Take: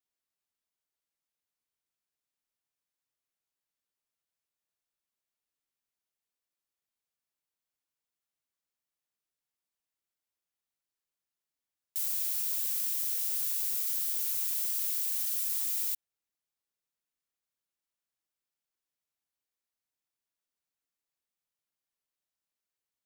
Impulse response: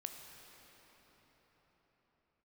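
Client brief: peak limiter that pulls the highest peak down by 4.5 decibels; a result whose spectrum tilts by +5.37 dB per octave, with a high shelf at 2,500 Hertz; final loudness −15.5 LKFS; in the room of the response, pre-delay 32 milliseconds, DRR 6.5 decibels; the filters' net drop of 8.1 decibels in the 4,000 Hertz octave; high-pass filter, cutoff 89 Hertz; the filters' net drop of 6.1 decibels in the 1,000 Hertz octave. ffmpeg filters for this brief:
-filter_complex "[0:a]highpass=89,equalizer=frequency=1000:width_type=o:gain=-7,highshelf=frequency=2500:gain=-3.5,equalizer=frequency=4000:width_type=o:gain=-7,alimiter=level_in=2.5dB:limit=-24dB:level=0:latency=1,volume=-2.5dB,asplit=2[link_01][link_02];[1:a]atrim=start_sample=2205,adelay=32[link_03];[link_02][link_03]afir=irnorm=-1:irlink=0,volume=-4dB[link_04];[link_01][link_04]amix=inputs=2:normalize=0,volume=17.5dB"

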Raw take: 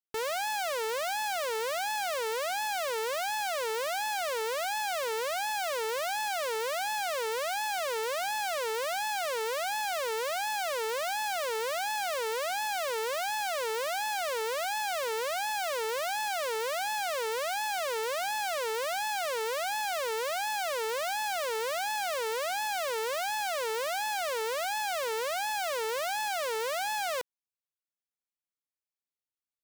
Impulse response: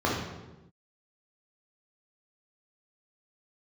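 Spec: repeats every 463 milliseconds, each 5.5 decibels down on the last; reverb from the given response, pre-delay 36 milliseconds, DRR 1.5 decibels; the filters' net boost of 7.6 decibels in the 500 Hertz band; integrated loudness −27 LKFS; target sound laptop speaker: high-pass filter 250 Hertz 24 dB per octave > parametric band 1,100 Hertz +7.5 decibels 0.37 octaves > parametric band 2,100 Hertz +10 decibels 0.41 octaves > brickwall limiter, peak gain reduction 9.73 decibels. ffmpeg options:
-filter_complex "[0:a]equalizer=frequency=500:width_type=o:gain=8.5,aecho=1:1:463|926|1389|1852|2315|2778|3241:0.531|0.281|0.149|0.079|0.0419|0.0222|0.0118,asplit=2[link_01][link_02];[1:a]atrim=start_sample=2205,adelay=36[link_03];[link_02][link_03]afir=irnorm=-1:irlink=0,volume=-15.5dB[link_04];[link_01][link_04]amix=inputs=2:normalize=0,highpass=frequency=250:width=0.5412,highpass=frequency=250:width=1.3066,equalizer=frequency=1100:width_type=o:width=0.37:gain=7.5,equalizer=frequency=2100:width_type=o:width=0.41:gain=10,volume=1dB,alimiter=limit=-18.5dB:level=0:latency=1"

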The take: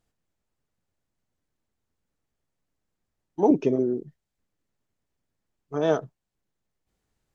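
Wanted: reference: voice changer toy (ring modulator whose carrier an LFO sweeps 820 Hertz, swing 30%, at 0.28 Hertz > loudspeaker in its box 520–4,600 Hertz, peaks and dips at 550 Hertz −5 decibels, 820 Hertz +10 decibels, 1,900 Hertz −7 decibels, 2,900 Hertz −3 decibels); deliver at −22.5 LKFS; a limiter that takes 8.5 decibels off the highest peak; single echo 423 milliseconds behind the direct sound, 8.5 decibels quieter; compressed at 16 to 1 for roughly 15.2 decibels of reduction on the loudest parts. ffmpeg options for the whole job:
ffmpeg -i in.wav -af "acompressor=threshold=-29dB:ratio=16,alimiter=level_in=4.5dB:limit=-24dB:level=0:latency=1,volume=-4.5dB,aecho=1:1:423:0.376,aeval=exprs='val(0)*sin(2*PI*820*n/s+820*0.3/0.28*sin(2*PI*0.28*n/s))':channel_layout=same,highpass=520,equalizer=frequency=550:width_type=q:width=4:gain=-5,equalizer=frequency=820:width_type=q:width=4:gain=10,equalizer=frequency=1900:width_type=q:width=4:gain=-7,equalizer=frequency=2900:width_type=q:width=4:gain=-3,lowpass=frequency=4600:width=0.5412,lowpass=frequency=4600:width=1.3066,volume=19dB" out.wav

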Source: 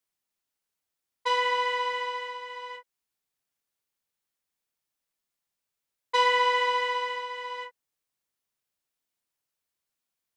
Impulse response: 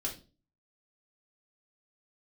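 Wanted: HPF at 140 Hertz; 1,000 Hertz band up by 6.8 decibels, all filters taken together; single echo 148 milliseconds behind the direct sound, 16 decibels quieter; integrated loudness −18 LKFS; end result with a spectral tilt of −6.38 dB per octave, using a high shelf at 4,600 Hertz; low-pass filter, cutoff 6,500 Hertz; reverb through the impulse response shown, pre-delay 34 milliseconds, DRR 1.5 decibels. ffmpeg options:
-filter_complex "[0:a]highpass=140,lowpass=6500,equalizer=frequency=1000:width_type=o:gain=7,highshelf=frequency=4600:gain=-5,aecho=1:1:148:0.158,asplit=2[link_01][link_02];[1:a]atrim=start_sample=2205,adelay=34[link_03];[link_02][link_03]afir=irnorm=-1:irlink=0,volume=-3dB[link_04];[link_01][link_04]amix=inputs=2:normalize=0,volume=4dB"

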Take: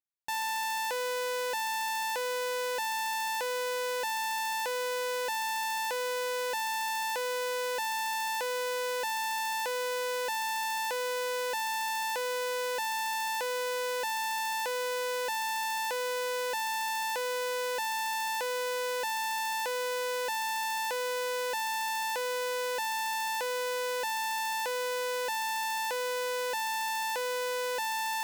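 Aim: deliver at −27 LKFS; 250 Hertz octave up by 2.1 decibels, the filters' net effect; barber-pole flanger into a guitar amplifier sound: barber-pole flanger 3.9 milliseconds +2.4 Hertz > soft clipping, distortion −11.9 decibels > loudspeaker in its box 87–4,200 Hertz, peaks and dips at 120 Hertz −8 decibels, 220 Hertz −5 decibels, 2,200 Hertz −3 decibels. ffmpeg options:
ffmpeg -i in.wav -filter_complex "[0:a]equalizer=frequency=250:width_type=o:gain=6,asplit=2[link_01][link_02];[link_02]adelay=3.9,afreqshift=2.4[link_03];[link_01][link_03]amix=inputs=2:normalize=1,asoftclip=threshold=-35.5dB,highpass=87,equalizer=frequency=120:width_type=q:width=4:gain=-8,equalizer=frequency=220:width_type=q:width=4:gain=-5,equalizer=frequency=2200:width_type=q:width=4:gain=-3,lowpass=frequency=4200:width=0.5412,lowpass=frequency=4200:width=1.3066,volume=12.5dB" out.wav

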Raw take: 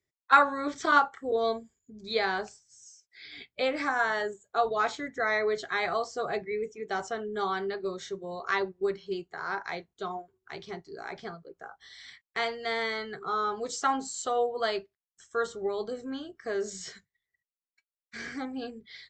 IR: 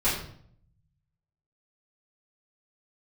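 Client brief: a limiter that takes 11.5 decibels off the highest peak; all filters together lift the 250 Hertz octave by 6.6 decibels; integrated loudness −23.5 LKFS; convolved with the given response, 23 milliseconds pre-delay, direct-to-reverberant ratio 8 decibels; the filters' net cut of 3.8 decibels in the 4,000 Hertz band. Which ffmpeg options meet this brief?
-filter_complex "[0:a]equalizer=frequency=250:width_type=o:gain=8,equalizer=frequency=4000:width_type=o:gain=-4.5,alimiter=limit=-18.5dB:level=0:latency=1,asplit=2[link_01][link_02];[1:a]atrim=start_sample=2205,adelay=23[link_03];[link_02][link_03]afir=irnorm=-1:irlink=0,volume=-20.5dB[link_04];[link_01][link_04]amix=inputs=2:normalize=0,volume=7dB"

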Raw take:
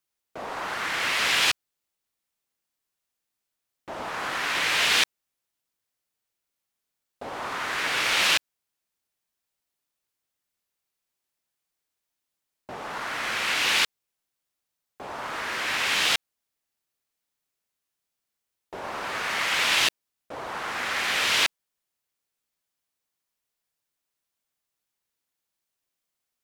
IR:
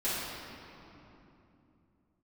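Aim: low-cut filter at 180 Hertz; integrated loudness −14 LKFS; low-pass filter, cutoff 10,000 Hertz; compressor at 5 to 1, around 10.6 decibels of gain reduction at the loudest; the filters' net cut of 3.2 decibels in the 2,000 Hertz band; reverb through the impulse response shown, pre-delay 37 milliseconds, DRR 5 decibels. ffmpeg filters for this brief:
-filter_complex "[0:a]highpass=180,lowpass=10000,equalizer=frequency=2000:width_type=o:gain=-4,acompressor=threshold=-32dB:ratio=5,asplit=2[link_01][link_02];[1:a]atrim=start_sample=2205,adelay=37[link_03];[link_02][link_03]afir=irnorm=-1:irlink=0,volume=-13.5dB[link_04];[link_01][link_04]amix=inputs=2:normalize=0,volume=19.5dB"

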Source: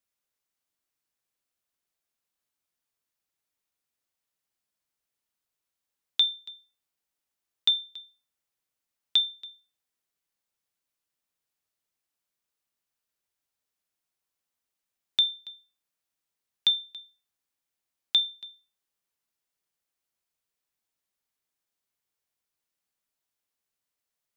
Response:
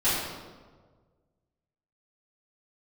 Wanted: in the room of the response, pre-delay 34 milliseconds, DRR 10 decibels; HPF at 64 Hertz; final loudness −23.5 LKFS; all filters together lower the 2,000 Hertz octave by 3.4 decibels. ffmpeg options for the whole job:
-filter_complex "[0:a]highpass=64,equalizer=frequency=2000:width_type=o:gain=-4.5,asplit=2[link_01][link_02];[1:a]atrim=start_sample=2205,adelay=34[link_03];[link_02][link_03]afir=irnorm=-1:irlink=0,volume=-23.5dB[link_04];[link_01][link_04]amix=inputs=2:normalize=0,volume=3.5dB"

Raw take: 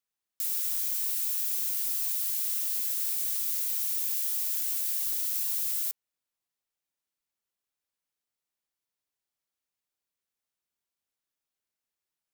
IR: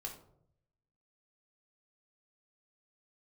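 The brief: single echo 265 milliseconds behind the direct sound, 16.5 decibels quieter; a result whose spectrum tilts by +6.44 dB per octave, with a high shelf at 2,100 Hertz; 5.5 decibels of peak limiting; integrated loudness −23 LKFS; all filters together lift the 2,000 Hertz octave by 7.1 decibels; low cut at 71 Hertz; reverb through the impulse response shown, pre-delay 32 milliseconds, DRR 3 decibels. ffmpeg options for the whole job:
-filter_complex "[0:a]highpass=71,equalizer=frequency=2000:width_type=o:gain=6,highshelf=frequency=2100:gain=4.5,alimiter=limit=-17dB:level=0:latency=1,aecho=1:1:265:0.15,asplit=2[link_01][link_02];[1:a]atrim=start_sample=2205,adelay=32[link_03];[link_02][link_03]afir=irnorm=-1:irlink=0,volume=-1dB[link_04];[link_01][link_04]amix=inputs=2:normalize=0,volume=-0.5dB"

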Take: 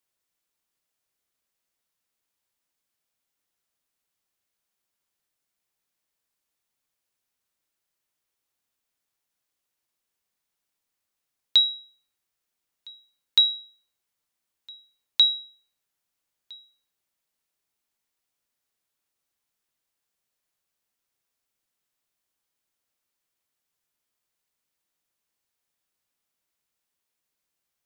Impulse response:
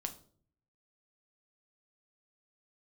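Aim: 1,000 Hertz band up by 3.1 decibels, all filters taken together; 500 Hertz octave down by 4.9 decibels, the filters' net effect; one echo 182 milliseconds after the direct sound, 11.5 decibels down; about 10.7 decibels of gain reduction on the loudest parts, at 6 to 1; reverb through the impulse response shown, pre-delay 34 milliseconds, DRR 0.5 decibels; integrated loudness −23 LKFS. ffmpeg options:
-filter_complex "[0:a]equalizer=frequency=500:width_type=o:gain=-8.5,equalizer=frequency=1000:width_type=o:gain=6,acompressor=threshold=-25dB:ratio=6,aecho=1:1:182:0.266,asplit=2[link_01][link_02];[1:a]atrim=start_sample=2205,adelay=34[link_03];[link_02][link_03]afir=irnorm=-1:irlink=0,volume=0.5dB[link_04];[link_01][link_04]amix=inputs=2:normalize=0,volume=4.5dB"

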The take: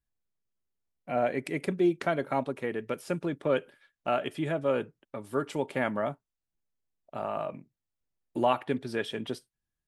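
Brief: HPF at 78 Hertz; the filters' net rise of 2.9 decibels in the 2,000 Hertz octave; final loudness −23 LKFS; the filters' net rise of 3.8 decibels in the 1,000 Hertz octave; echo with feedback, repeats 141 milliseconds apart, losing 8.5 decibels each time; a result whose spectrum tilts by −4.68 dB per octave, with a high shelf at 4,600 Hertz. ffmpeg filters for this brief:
ffmpeg -i in.wav -af "highpass=78,equalizer=frequency=1000:width_type=o:gain=5,equalizer=frequency=2000:width_type=o:gain=3.5,highshelf=frequency=4600:gain=-9,aecho=1:1:141|282|423|564:0.376|0.143|0.0543|0.0206,volume=6dB" out.wav

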